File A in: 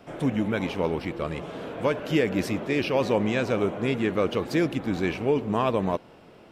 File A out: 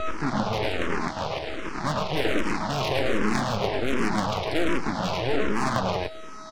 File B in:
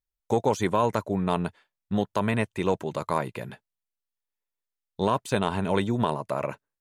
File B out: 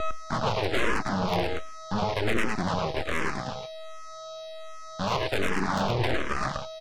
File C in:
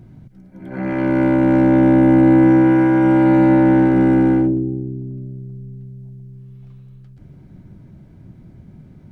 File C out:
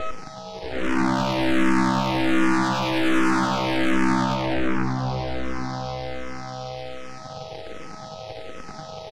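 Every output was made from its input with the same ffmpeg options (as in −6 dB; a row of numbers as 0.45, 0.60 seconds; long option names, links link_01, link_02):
-filter_complex "[0:a]aeval=exprs='val(0)+0.0501*sin(2*PI*640*n/s)':channel_layout=same,aresample=11025,acrusher=bits=5:mix=0:aa=0.5,aresample=44100,aemphasis=mode=reproduction:type=50kf,apsyclip=14.5dB,asoftclip=type=tanh:threshold=-11.5dB,highpass=frequency=87:width=0.5412,highpass=frequency=87:width=1.3066,bandreject=frequency=490:width=12,asplit=2[link_01][link_02];[link_02]aecho=0:1:107:0.668[link_03];[link_01][link_03]amix=inputs=2:normalize=0,aeval=exprs='0.841*(cos(1*acos(clip(val(0)/0.841,-1,1)))-cos(1*PI/2))+0.211*(cos(3*acos(clip(val(0)/0.841,-1,1)))-cos(3*PI/2))+0.106*(cos(8*acos(clip(val(0)/0.841,-1,1)))-cos(8*PI/2))':channel_layout=same,asplit=2[link_04][link_05];[link_05]afreqshift=-1.3[link_06];[link_04][link_06]amix=inputs=2:normalize=1,volume=-3dB"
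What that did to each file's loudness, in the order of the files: −0.5, −1.5, −10.0 LU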